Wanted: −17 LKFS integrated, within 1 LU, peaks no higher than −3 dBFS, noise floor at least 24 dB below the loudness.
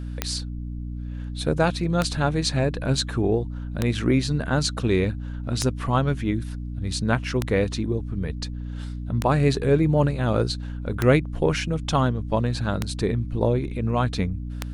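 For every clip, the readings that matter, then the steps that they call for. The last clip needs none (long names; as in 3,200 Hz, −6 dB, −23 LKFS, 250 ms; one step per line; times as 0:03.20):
number of clicks 9; mains hum 60 Hz; hum harmonics up to 300 Hz; level of the hum −29 dBFS; integrated loudness −24.5 LKFS; sample peak −5.0 dBFS; target loudness −17.0 LKFS
→ click removal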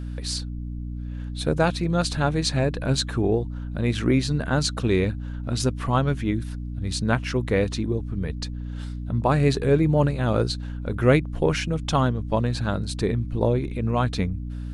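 number of clicks 0; mains hum 60 Hz; hum harmonics up to 300 Hz; level of the hum −29 dBFS
→ mains-hum notches 60/120/180/240/300 Hz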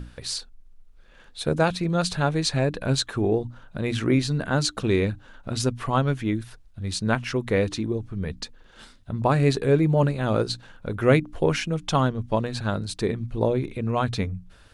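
mains hum none found; integrated loudness −25.0 LKFS; sample peak −6.5 dBFS; target loudness −17.0 LKFS
→ level +8 dB
brickwall limiter −3 dBFS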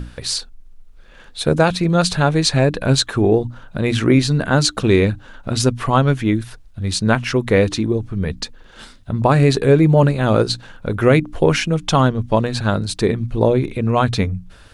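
integrated loudness −17.5 LKFS; sample peak −3.0 dBFS; background noise floor −44 dBFS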